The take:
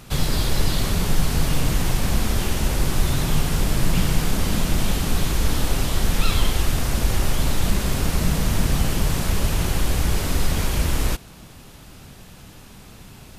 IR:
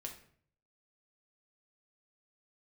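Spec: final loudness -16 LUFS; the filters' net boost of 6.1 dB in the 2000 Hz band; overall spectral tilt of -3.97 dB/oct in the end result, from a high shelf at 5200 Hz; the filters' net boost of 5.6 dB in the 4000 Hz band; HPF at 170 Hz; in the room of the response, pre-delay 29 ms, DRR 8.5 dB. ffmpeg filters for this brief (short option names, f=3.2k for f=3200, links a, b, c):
-filter_complex "[0:a]highpass=170,equalizer=f=2k:t=o:g=6.5,equalizer=f=4k:t=o:g=7.5,highshelf=f=5.2k:g=-6,asplit=2[a][b];[1:a]atrim=start_sample=2205,adelay=29[c];[b][c]afir=irnorm=-1:irlink=0,volume=-5.5dB[d];[a][d]amix=inputs=2:normalize=0,volume=7.5dB"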